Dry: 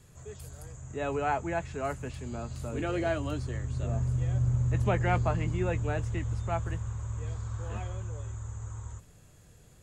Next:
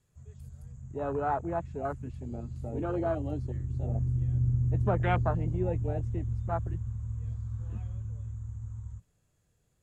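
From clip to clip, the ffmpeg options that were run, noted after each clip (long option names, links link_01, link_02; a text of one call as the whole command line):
ffmpeg -i in.wav -af "afwtdn=0.0251" out.wav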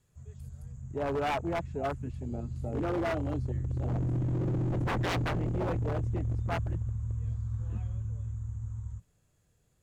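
ffmpeg -i in.wav -af "aeval=exprs='0.0447*(abs(mod(val(0)/0.0447+3,4)-2)-1)':channel_layout=same,volume=2dB" out.wav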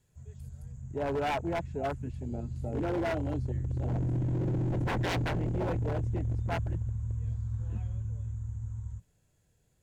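ffmpeg -i in.wav -af "bandreject=frequency=1200:width=7.2" out.wav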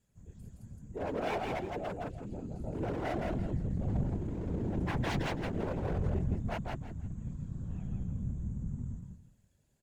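ffmpeg -i in.wav -af "aecho=1:1:166|332|498|664:0.708|0.177|0.0442|0.0111,afftfilt=real='hypot(re,im)*cos(2*PI*random(0))':imag='hypot(re,im)*sin(2*PI*random(1))':win_size=512:overlap=0.75,volume=1dB" out.wav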